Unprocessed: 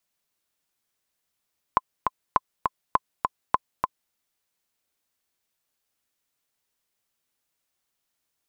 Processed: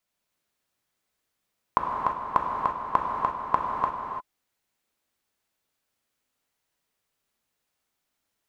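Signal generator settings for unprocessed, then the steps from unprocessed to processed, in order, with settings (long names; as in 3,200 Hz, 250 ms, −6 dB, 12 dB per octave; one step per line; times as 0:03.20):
click track 203 BPM, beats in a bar 2, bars 4, 1,030 Hz, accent 4 dB −5 dBFS
high-shelf EQ 3,900 Hz −6 dB
reverb whose tail is shaped and stops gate 370 ms flat, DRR −1 dB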